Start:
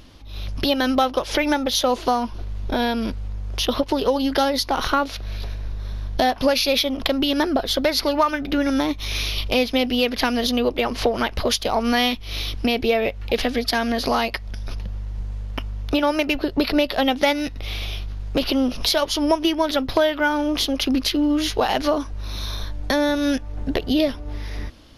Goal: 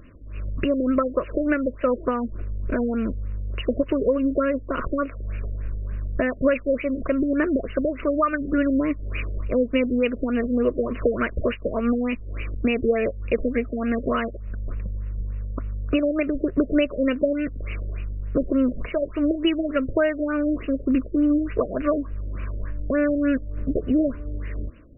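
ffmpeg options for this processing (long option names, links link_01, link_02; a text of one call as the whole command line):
ffmpeg -i in.wav -af "asuperstop=centerf=820:order=4:qfactor=1.9,afftfilt=real='re*lt(b*sr/1024,600*pow(3000/600,0.5+0.5*sin(2*PI*3.4*pts/sr)))':imag='im*lt(b*sr/1024,600*pow(3000/600,0.5+0.5*sin(2*PI*3.4*pts/sr)))':win_size=1024:overlap=0.75" out.wav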